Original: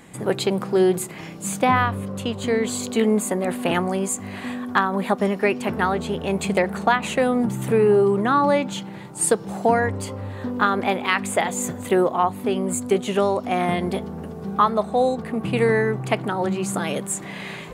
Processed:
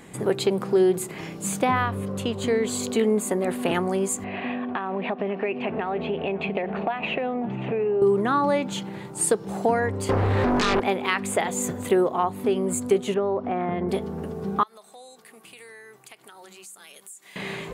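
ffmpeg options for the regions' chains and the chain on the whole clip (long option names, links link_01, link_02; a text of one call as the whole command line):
ffmpeg -i in.wav -filter_complex "[0:a]asettb=1/sr,asplit=3[link_01][link_02][link_03];[link_01]atrim=end=4.244[link_04];[link_02]atrim=start=4.24:end=8.02,asetpts=PTS-STARTPTS,afade=type=in:duration=0.004:curve=qsin,afade=type=out:start_time=3.776:duration=0.004:curve=qsin,acompressor=threshold=-24dB:ratio=6:attack=3.2:release=140:knee=1:detection=peak,highpass=130,equalizer=frequency=690:width_type=q:width=4:gain=9,equalizer=frequency=1400:width_type=q:width=4:gain=-3,equalizer=frequency=2600:width_type=q:width=4:gain=8,lowpass=frequency=3100:width=0.5412,lowpass=frequency=3100:width=1.3066,aecho=1:1:544:0.0891,atrim=end_sample=166698[link_05];[link_03]atrim=start=8.016[link_06];[link_04][link_05]acrossfade=duration=0.004:curve1=hsin:curve2=qsin[link_07];[link_07][link_06]acrossfade=duration=0.004:curve1=qsin:curve2=hsin,asettb=1/sr,asplit=3[link_08][link_09][link_10];[link_08]atrim=end=10.094[link_11];[link_09]atrim=start=10.09:end=10.8,asetpts=PTS-STARTPTS,afade=type=in:duration=0.004:curve=qsin,afade=type=out:start_time=0.706:duration=0.004:curve=qsin,lowpass=frequency=3400:poles=1,acompressor=threshold=-24dB:ratio=16:attack=3.2:release=140:knee=1:detection=peak,aeval=exprs='0.168*sin(PI/2*5.01*val(0)/0.168)':channel_layout=same[link_12];[link_10]atrim=start=10.796[link_13];[link_11][link_12]acrossfade=duration=0.004:curve1=hsin:curve2=qsin[link_14];[link_14][link_13]acrossfade=duration=0.004:curve1=qsin:curve2=hsin,asettb=1/sr,asplit=3[link_15][link_16][link_17];[link_15]atrim=end=13.144[link_18];[link_16]atrim=start=13.14:end=13.89,asetpts=PTS-STARTPTS,afade=type=in:duration=0.004:curve=qsin,afade=type=out:start_time=0.746:duration=0.004:curve=qsin,acompressor=threshold=-22dB:ratio=2:attack=3.2:release=140:knee=1:detection=peak,lowpass=1700[link_19];[link_17]atrim=start=13.886[link_20];[link_18][link_19]acrossfade=duration=0.004:curve1=hsin:curve2=qsin[link_21];[link_21][link_20]acrossfade=duration=0.004:curve1=qsin:curve2=hsin,asettb=1/sr,asplit=3[link_22][link_23][link_24];[link_22]atrim=end=14.634[link_25];[link_23]atrim=start=14.63:end=17.36,asetpts=PTS-STARTPTS,afade=type=in:duration=0.004:curve=qsin,afade=type=out:start_time=2.726:duration=0.004:curve=qsin,aderivative,acompressor=threshold=-43dB:ratio=4:attack=3.2:release=140:knee=1:detection=peak[link_26];[link_24]atrim=start=17.356[link_27];[link_25][link_26]acrossfade=duration=0.004:curve1=hsin:curve2=qsin[link_28];[link_28][link_27]acrossfade=duration=0.004:curve1=qsin:curve2=hsin,equalizer=frequency=400:width=4.2:gain=5.5,acompressor=threshold=-25dB:ratio=1.5" out.wav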